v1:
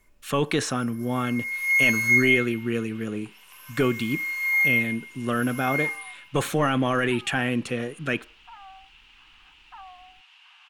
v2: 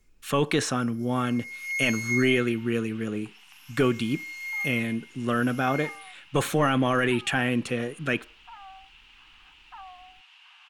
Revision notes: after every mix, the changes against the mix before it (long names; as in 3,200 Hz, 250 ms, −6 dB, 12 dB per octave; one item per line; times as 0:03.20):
first sound: add resonant band-pass 5,300 Hz, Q 1.3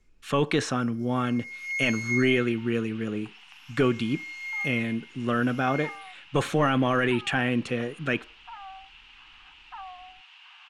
second sound +3.5 dB
master: add high-frequency loss of the air 59 metres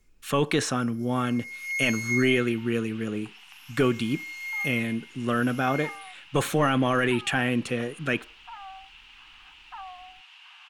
master: remove high-frequency loss of the air 59 metres